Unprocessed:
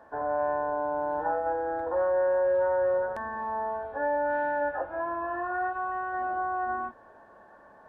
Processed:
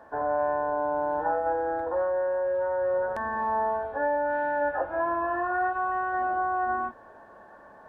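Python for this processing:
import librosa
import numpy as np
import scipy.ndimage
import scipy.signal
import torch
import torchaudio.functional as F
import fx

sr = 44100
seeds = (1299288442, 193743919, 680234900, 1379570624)

y = fx.rider(x, sr, range_db=10, speed_s=0.5)
y = y * 10.0 ** (1.5 / 20.0)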